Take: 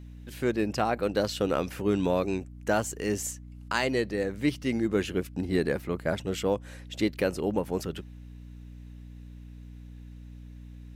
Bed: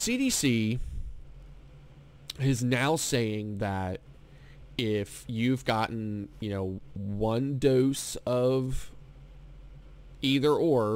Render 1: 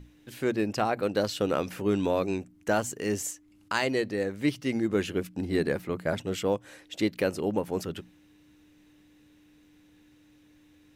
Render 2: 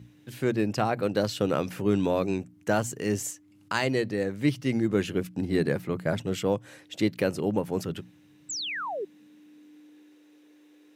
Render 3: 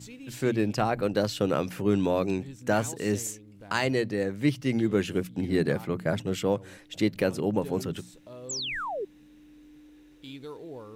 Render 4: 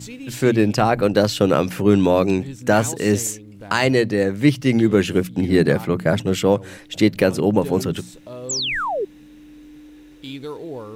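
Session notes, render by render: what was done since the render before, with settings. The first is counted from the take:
hum notches 60/120/180/240 Hz
8.49–9.05 s: painted sound fall 360–8100 Hz -33 dBFS; high-pass sweep 120 Hz -> 370 Hz, 8.21–10.19 s
add bed -17.5 dB
trim +9.5 dB; peak limiter -3 dBFS, peak gain reduction 3 dB

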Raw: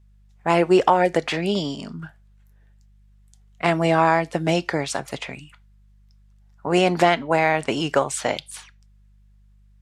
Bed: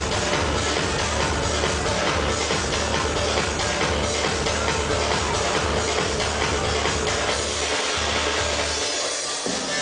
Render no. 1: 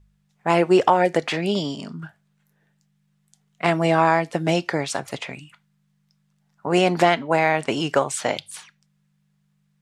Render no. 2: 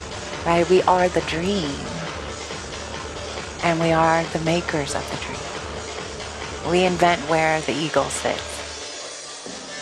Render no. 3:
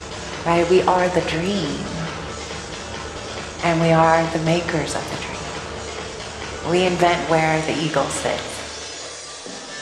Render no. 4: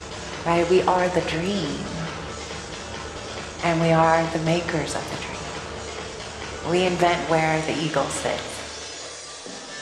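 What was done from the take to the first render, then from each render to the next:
de-hum 50 Hz, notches 2
add bed -8.5 dB
simulated room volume 540 m³, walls mixed, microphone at 0.68 m
trim -3 dB

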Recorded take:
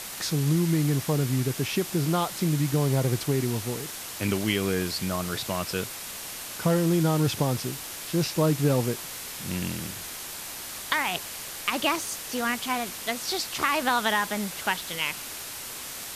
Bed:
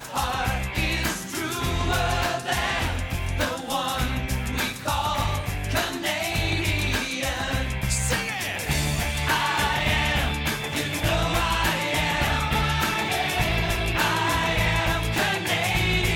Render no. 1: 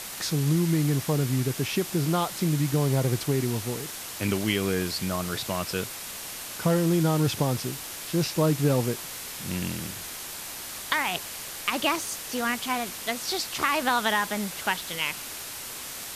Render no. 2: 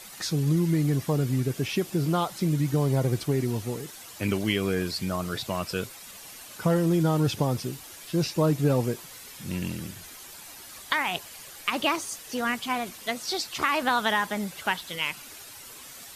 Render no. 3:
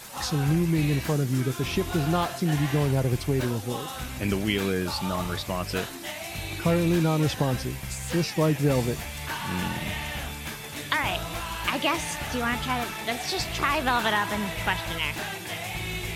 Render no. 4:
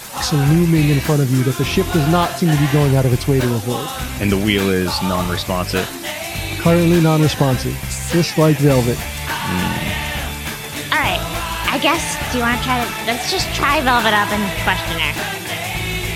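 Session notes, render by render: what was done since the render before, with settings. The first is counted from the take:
no audible change
noise reduction 10 dB, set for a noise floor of -38 dBFS
add bed -10 dB
trim +10 dB; peak limiter -2 dBFS, peak gain reduction 2.5 dB

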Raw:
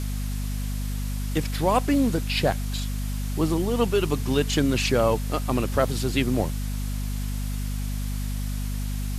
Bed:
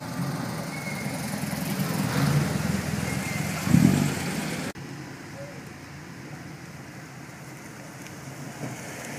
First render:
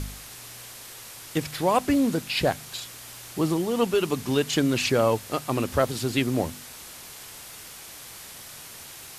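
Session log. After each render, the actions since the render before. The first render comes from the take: de-hum 50 Hz, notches 5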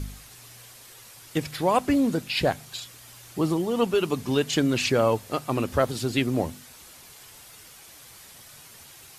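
noise reduction 7 dB, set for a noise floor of -43 dBFS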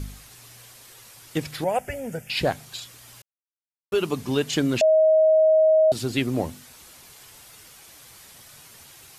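1.64–2.30 s: static phaser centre 1.1 kHz, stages 6; 3.22–3.92 s: mute; 4.81–5.92 s: bleep 631 Hz -13.5 dBFS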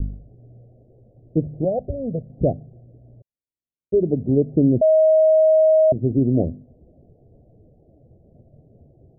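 steep low-pass 680 Hz 72 dB/octave; bass shelf 450 Hz +9.5 dB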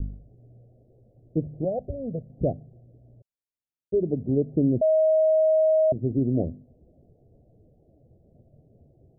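trim -5.5 dB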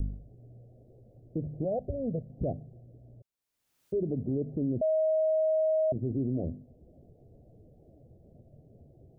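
peak limiter -23 dBFS, peak gain reduction 11 dB; upward compressor, threshold -51 dBFS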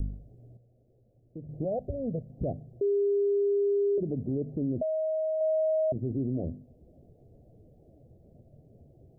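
0.57–1.49 s: gain -9 dB; 2.81–3.98 s: bleep 403 Hz -22.5 dBFS; 4.75–5.41 s: doubling 12 ms -9 dB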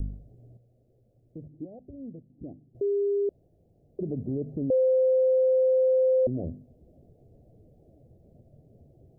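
1.48–2.75 s: cascade formant filter u; 3.29–3.99 s: room tone; 4.70–6.27 s: bleep 518 Hz -18.5 dBFS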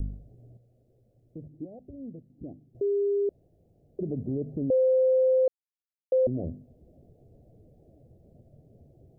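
5.48–6.12 s: mute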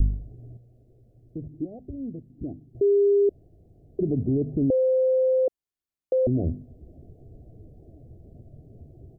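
bass shelf 370 Hz +10.5 dB; comb 2.8 ms, depth 31%

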